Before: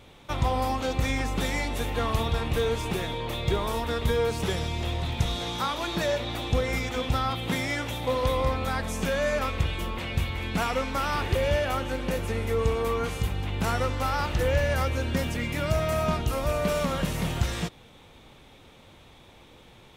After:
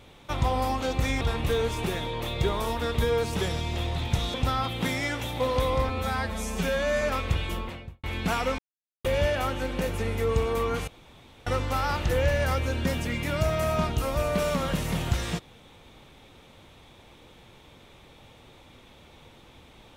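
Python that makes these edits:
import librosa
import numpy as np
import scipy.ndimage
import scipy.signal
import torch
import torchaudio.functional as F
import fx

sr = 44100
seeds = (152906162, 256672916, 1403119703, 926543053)

y = fx.studio_fade_out(x, sr, start_s=9.81, length_s=0.52)
y = fx.edit(y, sr, fx.cut(start_s=1.21, length_s=1.07),
    fx.cut(start_s=5.41, length_s=1.6),
    fx.stretch_span(start_s=8.56, length_s=0.75, factor=1.5),
    fx.silence(start_s=10.88, length_s=0.46),
    fx.room_tone_fill(start_s=13.17, length_s=0.59), tone=tone)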